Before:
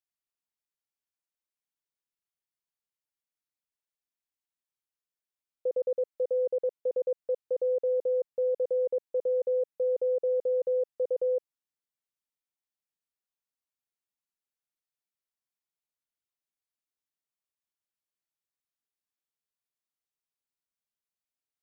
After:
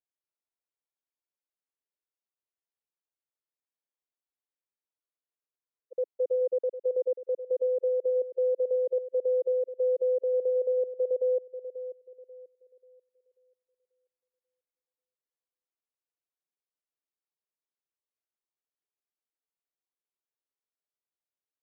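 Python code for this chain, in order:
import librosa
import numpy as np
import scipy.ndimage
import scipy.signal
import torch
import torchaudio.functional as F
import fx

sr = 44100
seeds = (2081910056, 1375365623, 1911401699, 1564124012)

y = scipy.signal.sosfilt(scipy.signal.butter(4, 350.0, 'highpass', fs=sr, output='sos'), x)
y = fx.tilt_eq(y, sr, slope=-4.0)
y = fx.echo_bbd(y, sr, ms=537, stages=2048, feedback_pct=33, wet_db=-11.5)
y = fx.spec_freeze(y, sr, seeds[0], at_s=4.99, hold_s=0.94)
y = y * librosa.db_to_amplitude(-4.0)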